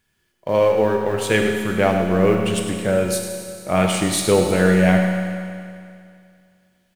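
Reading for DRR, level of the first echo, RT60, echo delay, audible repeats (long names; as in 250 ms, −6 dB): 1.0 dB, −10.5 dB, 2.3 s, 102 ms, 1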